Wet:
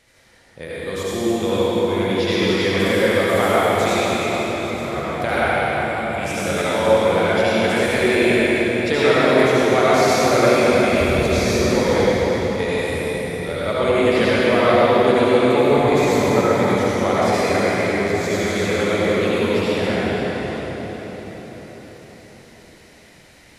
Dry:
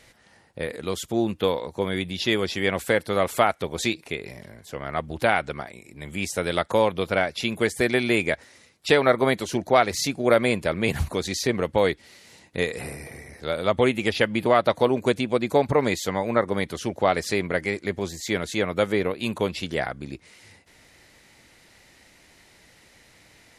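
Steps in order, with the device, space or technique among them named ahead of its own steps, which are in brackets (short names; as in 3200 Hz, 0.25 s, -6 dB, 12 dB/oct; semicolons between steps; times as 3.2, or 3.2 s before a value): cathedral (reverb RT60 5.4 s, pre-delay 64 ms, DRR -10.5 dB); gain -4.5 dB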